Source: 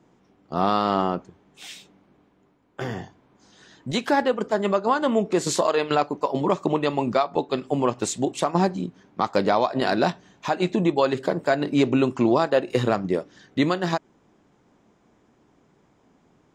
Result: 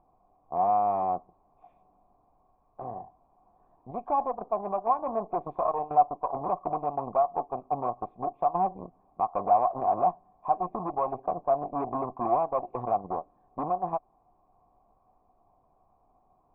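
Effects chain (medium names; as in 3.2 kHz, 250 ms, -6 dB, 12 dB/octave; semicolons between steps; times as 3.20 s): tilt shelf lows +9 dB; Chebyshev shaper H 8 -18 dB, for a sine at -2 dBFS; added noise brown -46 dBFS; cascade formant filter a; trim +2.5 dB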